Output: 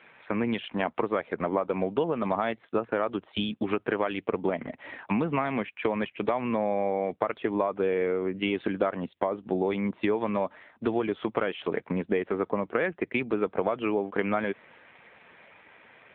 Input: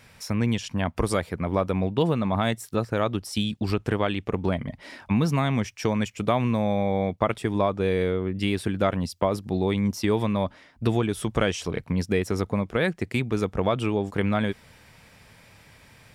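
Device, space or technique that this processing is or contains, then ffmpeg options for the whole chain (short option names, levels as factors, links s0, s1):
voicemail: -af "highpass=320,lowpass=2800,acompressor=threshold=0.0447:ratio=8,volume=1.88" -ar 8000 -c:a libopencore_amrnb -b:a 7400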